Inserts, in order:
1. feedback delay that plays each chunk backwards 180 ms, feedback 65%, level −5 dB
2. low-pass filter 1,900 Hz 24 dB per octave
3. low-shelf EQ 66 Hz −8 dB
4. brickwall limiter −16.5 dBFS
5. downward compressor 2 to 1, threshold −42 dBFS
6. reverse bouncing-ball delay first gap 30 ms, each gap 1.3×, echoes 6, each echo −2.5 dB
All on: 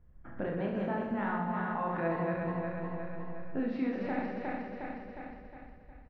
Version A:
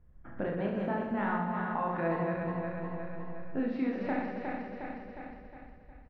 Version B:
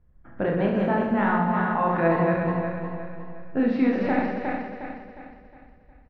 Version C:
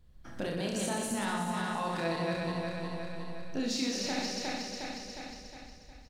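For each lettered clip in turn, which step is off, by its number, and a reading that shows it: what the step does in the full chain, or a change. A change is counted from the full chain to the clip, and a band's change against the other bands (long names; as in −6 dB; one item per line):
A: 4, change in momentary loudness spread +1 LU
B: 5, average gain reduction 6.5 dB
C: 2, 2 kHz band +2.5 dB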